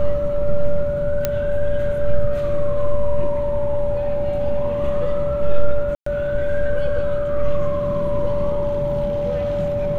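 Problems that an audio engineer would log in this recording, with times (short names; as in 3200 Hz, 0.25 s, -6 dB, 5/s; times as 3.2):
tone 580 Hz -20 dBFS
1.25 pop -5 dBFS
5.95–6.06 gap 0.114 s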